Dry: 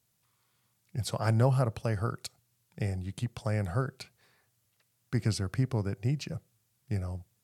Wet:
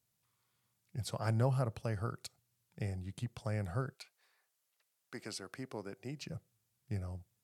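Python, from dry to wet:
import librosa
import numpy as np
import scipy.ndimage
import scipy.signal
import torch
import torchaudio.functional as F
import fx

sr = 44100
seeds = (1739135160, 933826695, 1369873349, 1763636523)

y = fx.highpass(x, sr, hz=fx.line((3.93, 730.0), (6.2, 240.0)), slope=12, at=(3.93, 6.2), fade=0.02)
y = F.gain(torch.from_numpy(y), -6.5).numpy()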